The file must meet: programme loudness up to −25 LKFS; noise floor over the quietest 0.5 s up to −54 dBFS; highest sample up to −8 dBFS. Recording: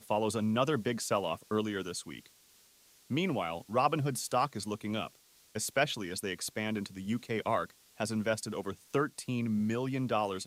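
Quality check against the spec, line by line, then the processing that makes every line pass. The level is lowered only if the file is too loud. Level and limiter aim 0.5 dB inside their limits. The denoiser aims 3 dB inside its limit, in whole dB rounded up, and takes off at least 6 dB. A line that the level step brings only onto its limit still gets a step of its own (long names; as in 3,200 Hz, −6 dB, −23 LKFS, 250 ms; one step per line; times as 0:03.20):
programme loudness −33.5 LKFS: in spec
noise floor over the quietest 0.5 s −63 dBFS: in spec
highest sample −14.5 dBFS: in spec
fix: no processing needed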